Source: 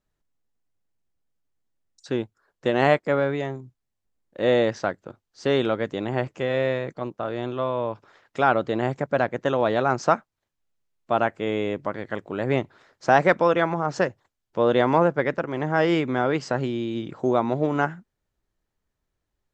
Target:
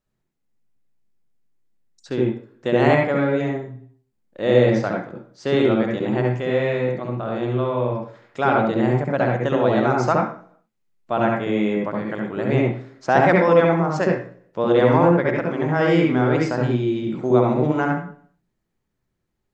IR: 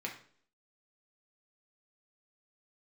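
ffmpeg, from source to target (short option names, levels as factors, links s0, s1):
-filter_complex "[0:a]asplit=2[s0][s1];[1:a]atrim=start_sample=2205,lowshelf=f=490:g=8.5,adelay=67[s2];[s1][s2]afir=irnorm=-1:irlink=0,volume=0.794[s3];[s0][s3]amix=inputs=2:normalize=0,volume=0.891"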